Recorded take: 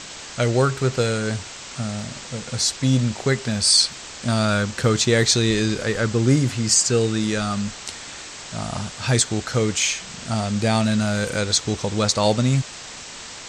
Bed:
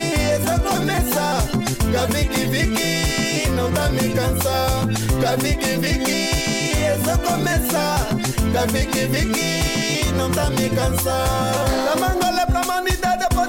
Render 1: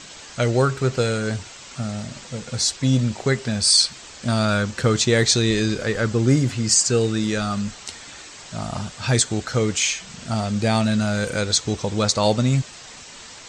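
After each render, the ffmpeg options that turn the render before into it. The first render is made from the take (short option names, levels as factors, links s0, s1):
-af "afftdn=nr=6:nf=-37"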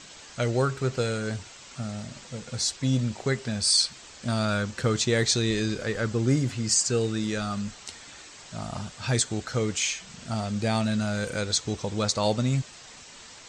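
-af "volume=0.501"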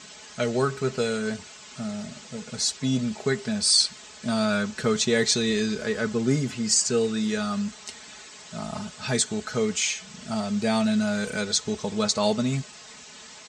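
-af "highpass=73,aecho=1:1:4.7:0.69"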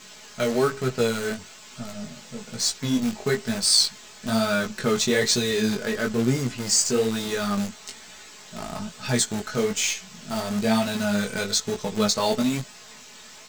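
-filter_complex "[0:a]asplit=2[s0][s1];[s1]acrusher=bits=5:dc=4:mix=0:aa=0.000001,volume=0.631[s2];[s0][s2]amix=inputs=2:normalize=0,flanger=delay=16:depth=5.7:speed=1.1"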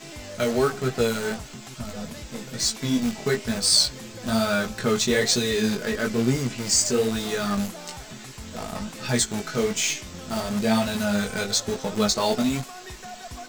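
-filter_complex "[1:a]volume=0.0891[s0];[0:a][s0]amix=inputs=2:normalize=0"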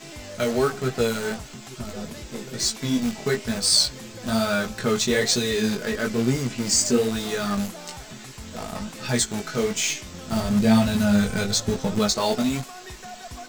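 -filter_complex "[0:a]asettb=1/sr,asplit=3[s0][s1][s2];[s0]atrim=end=1.714[s3];[s1]atrim=start=1.71:end=2.68,asetpts=PTS-STARTPTS,afade=t=in:d=0.004:c=qsin,afade=t=out:st=0.966:d=0.004:c=qsin,equalizer=f=380:w=6.9:g=12[s4];[s2]atrim=start=2.676[s5];[s3][s4]acrossfade=d=0.004:c1=hsin:c2=qsin[s6];[s6][s5]acrossfade=d=0.004:c1=qsin:c2=hsin,asettb=1/sr,asplit=3[s7][s8][s9];[s7]atrim=end=6.584[s10];[s8]atrim=start=6.58:end=6.98,asetpts=PTS-STARTPTS,afade=t=in:d=0.004:c=qsin,afade=t=out:st=0.396:d=0.004:c=qsin,equalizer=f=250:w=1.5:g=6.5[s11];[s9]atrim=start=6.976[s12];[s10][s11]acrossfade=d=0.004:c1=hsin:c2=qsin[s13];[s13][s12]acrossfade=d=0.004:c1=qsin:c2=hsin,asettb=1/sr,asplit=3[s14][s15][s16];[s14]atrim=end=10.324[s17];[s15]atrim=start=10.32:end=11.99,asetpts=PTS-STARTPTS,afade=t=in:d=0.004:c=qsin,afade=t=out:st=1.666:d=0.004:c=qsin,bass=f=250:g=9,treble=f=4000:g=0[s18];[s16]atrim=start=11.986[s19];[s17][s18]acrossfade=d=0.004:c1=hsin:c2=qsin[s20];[s20][s19]acrossfade=d=0.004:c1=qsin:c2=hsin"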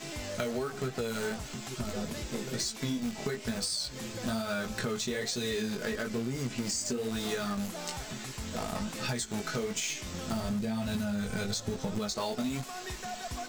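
-af "alimiter=limit=0.158:level=0:latency=1:release=224,acompressor=threshold=0.0316:ratio=6"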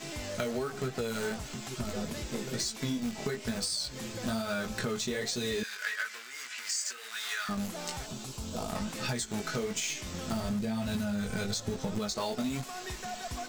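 -filter_complex "[0:a]asettb=1/sr,asplit=3[s0][s1][s2];[s0]atrim=end=5.634[s3];[s1]atrim=start=5.63:end=7.49,asetpts=PTS-STARTPTS,afade=t=in:d=0.004:c=qsin,afade=t=out:st=1.856:d=0.004:c=qsin,highpass=f=1600:t=q:w=2.1[s4];[s2]atrim=start=7.486[s5];[s3][s4]acrossfade=d=0.004:c1=hsin:c2=qsin[s6];[s6][s5]acrossfade=d=0.004:c1=qsin:c2=hsin,asettb=1/sr,asplit=3[s7][s8][s9];[s7]atrim=end=8.064[s10];[s8]atrim=start=8.06:end=8.7,asetpts=PTS-STARTPTS,afade=t=in:d=0.004:c=qsin,afade=t=out:st=0.636:d=0.004:c=qsin,equalizer=f=1900:w=2.3:g=-14[s11];[s9]atrim=start=8.696[s12];[s10][s11]acrossfade=d=0.004:c1=hsin:c2=qsin[s13];[s13][s12]acrossfade=d=0.004:c1=qsin:c2=hsin"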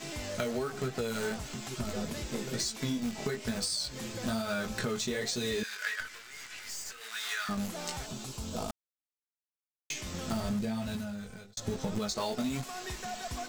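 -filter_complex "[0:a]asettb=1/sr,asplit=3[s0][s1][s2];[s0]atrim=end=6.004[s3];[s1]atrim=start=6:end=7.01,asetpts=PTS-STARTPTS,afade=t=in:d=0.004:c=qsin,afade=t=out:st=1.006:d=0.004:c=qsin,aeval=exprs='(tanh(79.4*val(0)+0.6)-tanh(0.6))/79.4':c=same[s4];[s2]atrim=start=7.006[s5];[s3][s4]acrossfade=d=0.004:c1=hsin:c2=qsin[s6];[s6][s5]acrossfade=d=0.004:c1=qsin:c2=hsin,asplit=4[s7][s8][s9][s10];[s7]atrim=end=8.71,asetpts=PTS-STARTPTS,afade=t=out:st=8.706:d=0.004:c=hsin[s11];[s8]atrim=start=8.71:end=9.9,asetpts=PTS-STARTPTS,volume=0[s12];[s9]atrim=start=9.9:end=11.57,asetpts=PTS-STARTPTS,afade=t=in:d=0.004:c=hsin,afade=t=out:st=0.71:d=0.96[s13];[s10]atrim=start=11.57,asetpts=PTS-STARTPTS,afade=t=in:d=0.004:c=hsin[s14];[s11][s12][s13][s14]concat=n=4:v=0:a=1"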